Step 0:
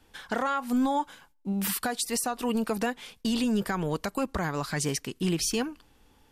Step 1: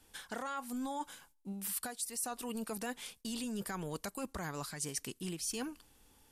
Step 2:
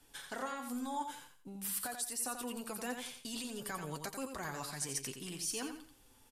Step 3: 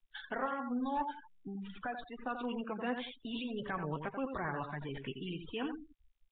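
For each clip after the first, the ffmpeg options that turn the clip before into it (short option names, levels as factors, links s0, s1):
-af "equalizer=f=10000:t=o:w=1.5:g=12.5,areverse,acompressor=threshold=0.0282:ratio=5,areverse,volume=0.501"
-filter_complex "[0:a]acrossover=split=430[s0][s1];[s0]alimiter=level_in=7.08:limit=0.0631:level=0:latency=1,volume=0.141[s2];[s2][s1]amix=inputs=2:normalize=0,flanger=delay=6.9:depth=1.3:regen=43:speed=0.55:shape=triangular,aecho=1:1:87|174|261:0.447|0.121|0.0326,volume=1.58"
-af "aeval=exprs='clip(val(0),-1,0.0133)':c=same,afftfilt=real='re*gte(hypot(re,im),0.00631)':imag='im*gte(hypot(re,im),0.00631)':win_size=1024:overlap=0.75,volume=1.78" -ar 8000 -c:a nellymoser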